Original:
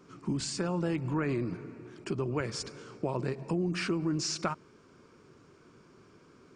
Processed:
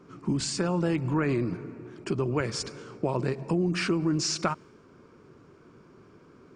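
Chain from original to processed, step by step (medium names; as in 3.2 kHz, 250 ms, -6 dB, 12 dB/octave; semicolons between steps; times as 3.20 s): tape noise reduction on one side only decoder only; trim +4.5 dB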